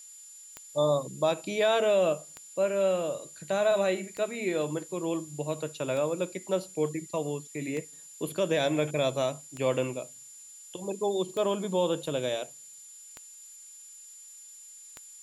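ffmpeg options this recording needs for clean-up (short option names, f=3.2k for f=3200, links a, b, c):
-af "adeclick=t=4,bandreject=f=7.1k:w=30,afftdn=nr=25:nf=-49"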